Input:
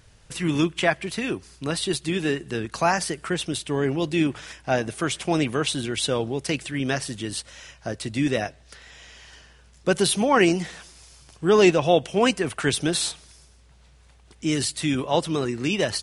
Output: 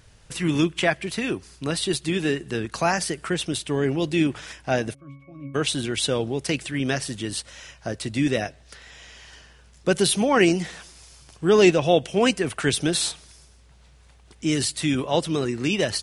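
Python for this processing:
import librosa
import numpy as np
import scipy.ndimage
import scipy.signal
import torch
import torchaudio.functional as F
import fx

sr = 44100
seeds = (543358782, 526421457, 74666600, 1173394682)

y = fx.dynamic_eq(x, sr, hz=1000.0, q=1.4, threshold_db=-34.0, ratio=4.0, max_db=-4)
y = fx.octave_resonator(y, sr, note='C#', decay_s=0.49, at=(4.93, 5.54), fade=0.02)
y = y * librosa.db_to_amplitude(1.0)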